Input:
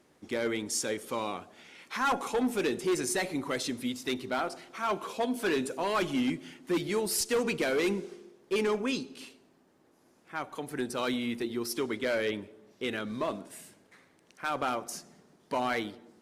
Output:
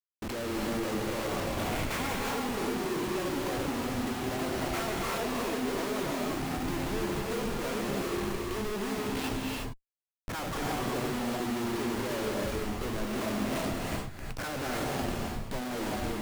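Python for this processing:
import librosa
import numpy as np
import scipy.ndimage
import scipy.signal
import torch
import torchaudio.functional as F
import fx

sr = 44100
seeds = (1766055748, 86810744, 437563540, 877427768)

y = fx.env_lowpass_down(x, sr, base_hz=470.0, full_db=-28.0)
y = fx.schmitt(y, sr, flips_db=-50.5)
y = fx.rev_gated(y, sr, seeds[0], gate_ms=380, shape='rising', drr_db=-1.5)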